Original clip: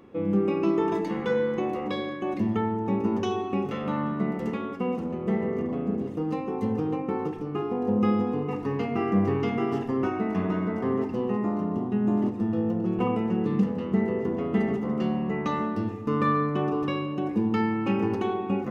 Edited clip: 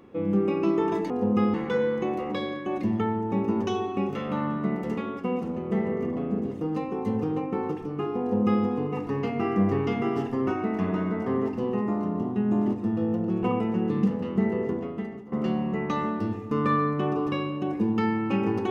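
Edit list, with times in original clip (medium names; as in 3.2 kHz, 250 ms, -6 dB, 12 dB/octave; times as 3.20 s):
7.76–8.20 s: copy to 1.10 s
14.25–14.88 s: fade out quadratic, to -15 dB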